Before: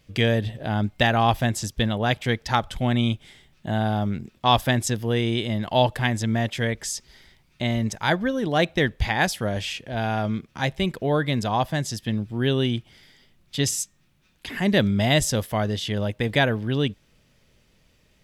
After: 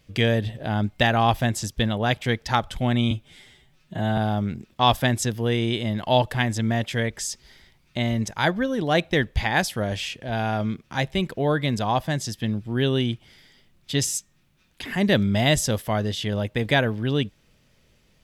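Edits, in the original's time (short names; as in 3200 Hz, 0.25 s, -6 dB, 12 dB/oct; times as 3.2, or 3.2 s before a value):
3.11–3.82 stretch 1.5×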